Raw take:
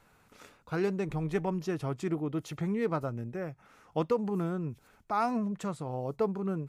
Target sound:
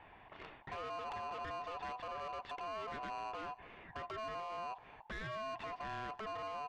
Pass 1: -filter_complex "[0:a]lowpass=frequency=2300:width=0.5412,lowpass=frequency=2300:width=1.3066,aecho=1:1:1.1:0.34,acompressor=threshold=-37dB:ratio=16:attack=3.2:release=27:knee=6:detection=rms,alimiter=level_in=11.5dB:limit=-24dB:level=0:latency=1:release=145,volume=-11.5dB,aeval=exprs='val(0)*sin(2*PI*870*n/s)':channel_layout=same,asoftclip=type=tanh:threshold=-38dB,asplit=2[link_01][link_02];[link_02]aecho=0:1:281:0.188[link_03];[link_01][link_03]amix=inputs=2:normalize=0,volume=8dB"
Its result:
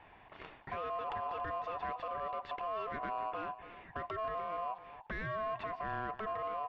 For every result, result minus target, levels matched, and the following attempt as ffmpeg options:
soft clipping: distortion −11 dB; echo-to-direct +8 dB
-filter_complex "[0:a]lowpass=frequency=2300:width=0.5412,lowpass=frequency=2300:width=1.3066,aecho=1:1:1.1:0.34,acompressor=threshold=-37dB:ratio=16:attack=3.2:release=27:knee=6:detection=rms,alimiter=level_in=11.5dB:limit=-24dB:level=0:latency=1:release=145,volume=-11.5dB,aeval=exprs='val(0)*sin(2*PI*870*n/s)':channel_layout=same,asoftclip=type=tanh:threshold=-47.5dB,asplit=2[link_01][link_02];[link_02]aecho=0:1:281:0.188[link_03];[link_01][link_03]amix=inputs=2:normalize=0,volume=8dB"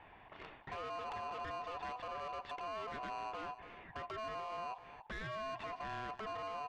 echo-to-direct +8 dB
-filter_complex "[0:a]lowpass=frequency=2300:width=0.5412,lowpass=frequency=2300:width=1.3066,aecho=1:1:1.1:0.34,acompressor=threshold=-37dB:ratio=16:attack=3.2:release=27:knee=6:detection=rms,alimiter=level_in=11.5dB:limit=-24dB:level=0:latency=1:release=145,volume=-11.5dB,aeval=exprs='val(0)*sin(2*PI*870*n/s)':channel_layout=same,asoftclip=type=tanh:threshold=-47.5dB,asplit=2[link_01][link_02];[link_02]aecho=0:1:281:0.075[link_03];[link_01][link_03]amix=inputs=2:normalize=0,volume=8dB"

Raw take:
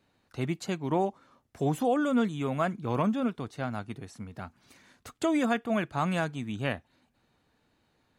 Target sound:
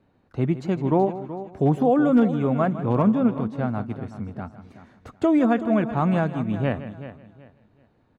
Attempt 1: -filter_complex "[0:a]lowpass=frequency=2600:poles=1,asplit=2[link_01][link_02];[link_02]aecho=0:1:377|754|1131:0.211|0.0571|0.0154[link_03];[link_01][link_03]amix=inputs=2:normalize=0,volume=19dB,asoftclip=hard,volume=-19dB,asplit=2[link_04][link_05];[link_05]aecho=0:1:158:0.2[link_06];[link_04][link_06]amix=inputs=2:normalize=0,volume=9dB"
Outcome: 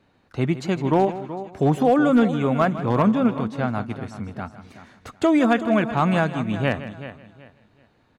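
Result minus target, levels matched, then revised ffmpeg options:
2,000 Hz band +6.0 dB
-filter_complex "[0:a]lowpass=frequency=680:poles=1,asplit=2[link_01][link_02];[link_02]aecho=0:1:377|754|1131:0.211|0.0571|0.0154[link_03];[link_01][link_03]amix=inputs=2:normalize=0,volume=19dB,asoftclip=hard,volume=-19dB,asplit=2[link_04][link_05];[link_05]aecho=0:1:158:0.2[link_06];[link_04][link_06]amix=inputs=2:normalize=0,volume=9dB"

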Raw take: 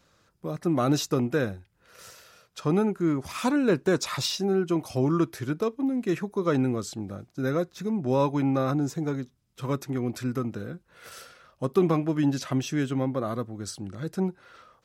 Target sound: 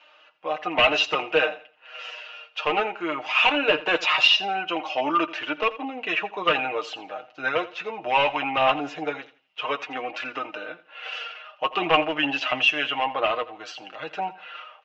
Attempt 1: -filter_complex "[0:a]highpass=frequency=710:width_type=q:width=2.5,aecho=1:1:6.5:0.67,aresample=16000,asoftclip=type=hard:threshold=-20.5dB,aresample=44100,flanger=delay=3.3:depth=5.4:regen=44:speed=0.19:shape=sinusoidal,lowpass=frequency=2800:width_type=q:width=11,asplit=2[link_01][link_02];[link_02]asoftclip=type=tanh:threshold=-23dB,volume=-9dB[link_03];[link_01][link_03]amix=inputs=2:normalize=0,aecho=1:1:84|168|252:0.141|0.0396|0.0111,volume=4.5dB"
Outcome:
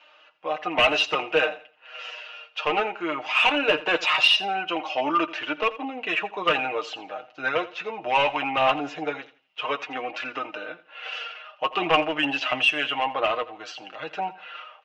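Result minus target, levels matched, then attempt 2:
soft clipping: distortion +15 dB
-filter_complex "[0:a]highpass=frequency=710:width_type=q:width=2.5,aecho=1:1:6.5:0.67,aresample=16000,asoftclip=type=hard:threshold=-20.5dB,aresample=44100,flanger=delay=3.3:depth=5.4:regen=44:speed=0.19:shape=sinusoidal,lowpass=frequency=2800:width_type=q:width=11,asplit=2[link_01][link_02];[link_02]asoftclip=type=tanh:threshold=-12.5dB,volume=-9dB[link_03];[link_01][link_03]amix=inputs=2:normalize=0,aecho=1:1:84|168|252:0.141|0.0396|0.0111,volume=4.5dB"

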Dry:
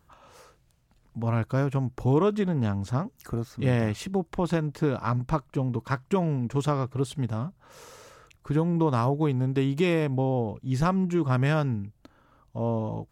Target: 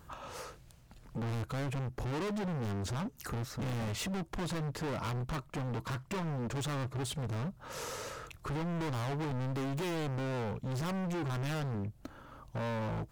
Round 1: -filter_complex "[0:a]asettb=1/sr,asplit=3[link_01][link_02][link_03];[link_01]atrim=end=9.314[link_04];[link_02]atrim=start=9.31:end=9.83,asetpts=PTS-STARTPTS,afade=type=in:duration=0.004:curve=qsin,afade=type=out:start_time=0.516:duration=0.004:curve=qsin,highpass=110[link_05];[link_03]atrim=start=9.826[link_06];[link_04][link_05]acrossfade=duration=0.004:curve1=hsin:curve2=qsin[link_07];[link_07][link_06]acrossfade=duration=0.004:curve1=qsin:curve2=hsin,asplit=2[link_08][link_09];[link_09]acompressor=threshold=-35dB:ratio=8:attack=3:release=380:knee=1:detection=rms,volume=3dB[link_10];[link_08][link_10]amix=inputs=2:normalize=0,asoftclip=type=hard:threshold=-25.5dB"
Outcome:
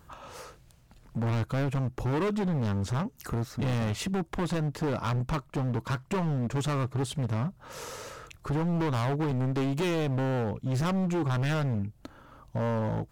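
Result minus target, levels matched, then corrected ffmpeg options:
hard clipping: distortion −4 dB
-filter_complex "[0:a]asettb=1/sr,asplit=3[link_01][link_02][link_03];[link_01]atrim=end=9.314[link_04];[link_02]atrim=start=9.31:end=9.83,asetpts=PTS-STARTPTS,afade=type=in:duration=0.004:curve=qsin,afade=type=out:start_time=0.516:duration=0.004:curve=qsin,highpass=110[link_05];[link_03]atrim=start=9.826[link_06];[link_04][link_05]acrossfade=duration=0.004:curve1=hsin:curve2=qsin[link_07];[link_07][link_06]acrossfade=duration=0.004:curve1=qsin:curve2=hsin,asplit=2[link_08][link_09];[link_09]acompressor=threshold=-35dB:ratio=8:attack=3:release=380:knee=1:detection=rms,volume=3dB[link_10];[link_08][link_10]amix=inputs=2:normalize=0,asoftclip=type=hard:threshold=-34dB"

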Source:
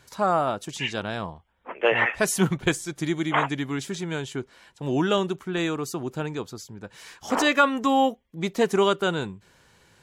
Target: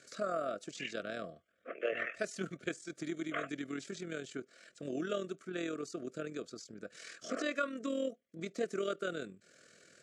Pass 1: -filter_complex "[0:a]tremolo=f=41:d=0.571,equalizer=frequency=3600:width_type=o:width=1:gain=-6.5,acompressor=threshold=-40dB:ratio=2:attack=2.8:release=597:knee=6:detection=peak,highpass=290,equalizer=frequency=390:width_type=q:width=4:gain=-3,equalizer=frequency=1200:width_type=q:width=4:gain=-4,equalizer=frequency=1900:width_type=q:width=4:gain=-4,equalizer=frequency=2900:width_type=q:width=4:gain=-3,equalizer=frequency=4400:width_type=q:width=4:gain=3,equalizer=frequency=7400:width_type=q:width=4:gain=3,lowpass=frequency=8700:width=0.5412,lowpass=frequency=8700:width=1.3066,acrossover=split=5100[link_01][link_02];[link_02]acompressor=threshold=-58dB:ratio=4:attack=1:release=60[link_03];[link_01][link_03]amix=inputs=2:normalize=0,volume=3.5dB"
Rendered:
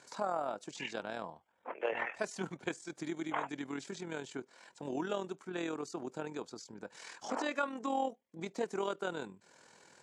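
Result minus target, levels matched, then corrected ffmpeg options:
1,000 Hz band +5.5 dB
-filter_complex "[0:a]tremolo=f=41:d=0.571,asuperstop=centerf=890:order=12:qfactor=2,equalizer=frequency=3600:width_type=o:width=1:gain=-6.5,acompressor=threshold=-40dB:ratio=2:attack=2.8:release=597:knee=6:detection=peak,highpass=290,equalizer=frequency=390:width_type=q:width=4:gain=-3,equalizer=frequency=1200:width_type=q:width=4:gain=-4,equalizer=frequency=1900:width_type=q:width=4:gain=-4,equalizer=frequency=2900:width_type=q:width=4:gain=-3,equalizer=frequency=4400:width_type=q:width=4:gain=3,equalizer=frequency=7400:width_type=q:width=4:gain=3,lowpass=frequency=8700:width=0.5412,lowpass=frequency=8700:width=1.3066,acrossover=split=5100[link_01][link_02];[link_02]acompressor=threshold=-58dB:ratio=4:attack=1:release=60[link_03];[link_01][link_03]amix=inputs=2:normalize=0,volume=3.5dB"

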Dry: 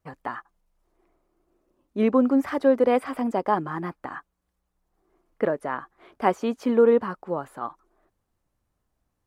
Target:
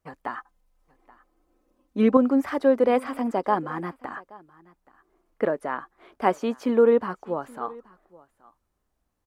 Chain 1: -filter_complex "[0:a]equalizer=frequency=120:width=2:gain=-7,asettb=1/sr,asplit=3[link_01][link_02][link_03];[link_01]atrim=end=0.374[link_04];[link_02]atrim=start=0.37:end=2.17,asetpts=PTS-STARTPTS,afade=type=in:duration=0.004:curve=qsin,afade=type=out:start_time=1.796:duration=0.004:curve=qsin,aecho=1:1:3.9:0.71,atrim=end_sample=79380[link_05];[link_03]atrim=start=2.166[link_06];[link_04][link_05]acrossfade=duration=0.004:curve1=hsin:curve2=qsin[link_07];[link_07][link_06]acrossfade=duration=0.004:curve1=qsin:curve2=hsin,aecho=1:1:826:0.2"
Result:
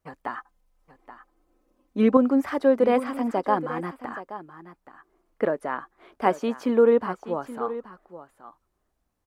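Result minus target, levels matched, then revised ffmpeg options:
echo-to-direct +9 dB
-filter_complex "[0:a]equalizer=frequency=120:width=2:gain=-7,asettb=1/sr,asplit=3[link_01][link_02][link_03];[link_01]atrim=end=0.374[link_04];[link_02]atrim=start=0.37:end=2.17,asetpts=PTS-STARTPTS,afade=type=in:duration=0.004:curve=qsin,afade=type=out:start_time=1.796:duration=0.004:curve=qsin,aecho=1:1:3.9:0.71,atrim=end_sample=79380[link_05];[link_03]atrim=start=2.166[link_06];[link_04][link_05]acrossfade=duration=0.004:curve1=hsin:curve2=qsin[link_07];[link_07][link_06]acrossfade=duration=0.004:curve1=qsin:curve2=hsin,aecho=1:1:826:0.0708"

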